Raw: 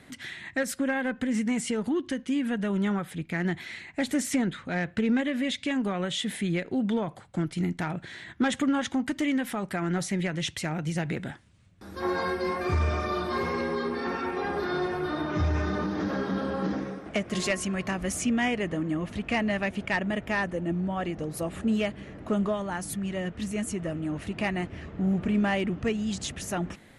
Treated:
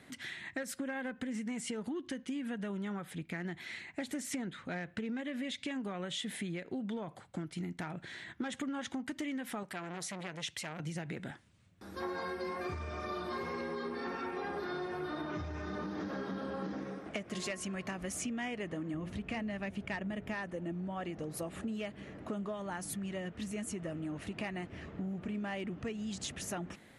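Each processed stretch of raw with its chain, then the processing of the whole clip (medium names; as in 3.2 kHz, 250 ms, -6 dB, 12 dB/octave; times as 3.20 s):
9.63–10.80 s: bass shelf 480 Hz -6.5 dB + transformer saturation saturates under 1.3 kHz
18.94–20.34 s: bass shelf 200 Hz +10.5 dB + hum notches 60/120/180/240/300/360/420/480/540 Hz
whole clip: compression, threshold -31 dBFS; bass shelf 66 Hz -10.5 dB; trim -4 dB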